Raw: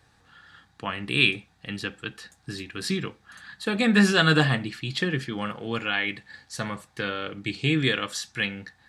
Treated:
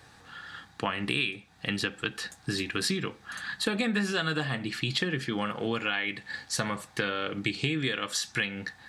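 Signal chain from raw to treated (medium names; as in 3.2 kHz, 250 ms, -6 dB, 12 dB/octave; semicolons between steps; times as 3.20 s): bass shelf 100 Hz -8 dB; compression 8:1, threshold -34 dBFS, peak gain reduction 19 dB; trim +8 dB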